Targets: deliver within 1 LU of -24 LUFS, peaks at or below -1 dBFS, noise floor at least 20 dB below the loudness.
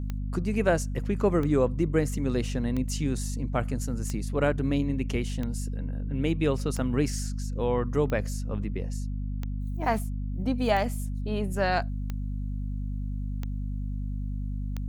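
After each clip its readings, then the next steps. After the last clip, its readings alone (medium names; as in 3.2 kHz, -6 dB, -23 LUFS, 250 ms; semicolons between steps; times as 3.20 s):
clicks found 12; hum 50 Hz; highest harmonic 250 Hz; hum level -29 dBFS; loudness -29.5 LUFS; peak level -11.0 dBFS; loudness target -24.0 LUFS
-> de-click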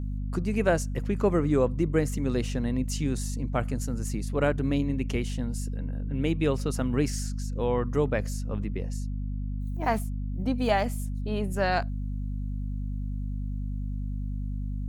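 clicks found 0; hum 50 Hz; highest harmonic 250 Hz; hum level -29 dBFS
-> hum notches 50/100/150/200/250 Hz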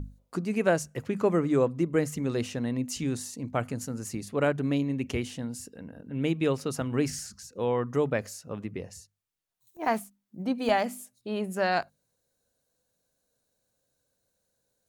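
hum not found; loudness -29.5 LUFS; peak level -11.0 dBFS; loudness target -24.0 LUFS
-> trim +5.5 dB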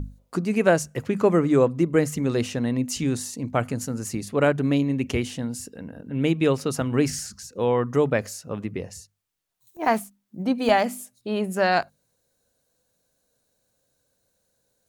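loudness -24.5 LUFS; peak level -5.5 dBFS; noise floor -73 dBFS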